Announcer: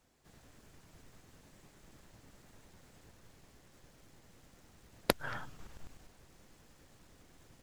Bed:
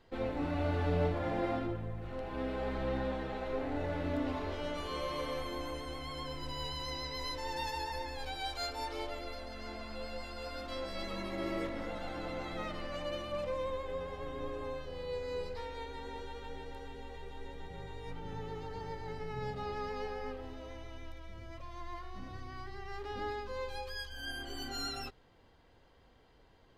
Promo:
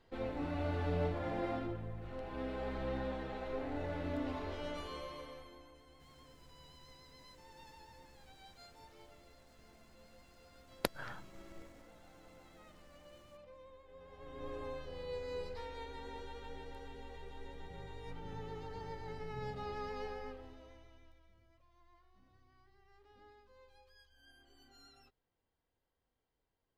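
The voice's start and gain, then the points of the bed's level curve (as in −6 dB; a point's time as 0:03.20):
5.75 s, −5.5 dB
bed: 0:04.77 −4 dB
0:05.74 −20 dB
0:13.86 −20 dB
0:14.52 −3.5 dB
0:20.11 −3.5 dB
0:21.62 −23 dB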